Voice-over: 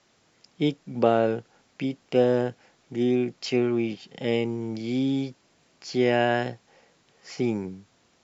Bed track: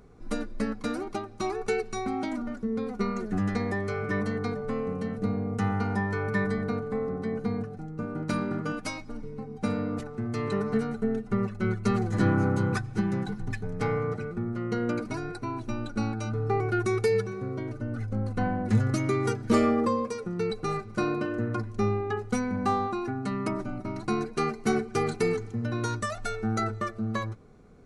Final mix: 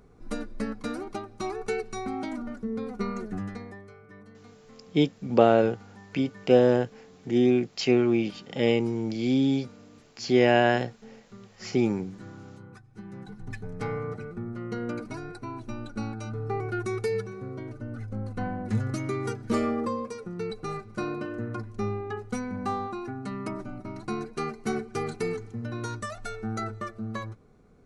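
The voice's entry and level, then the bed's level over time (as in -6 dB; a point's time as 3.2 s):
4.35 s, +2.0 dB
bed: 3.23 s -2 dB
4.03 s -21 dB
12.8 s -21 dB
13.56 s -4 dB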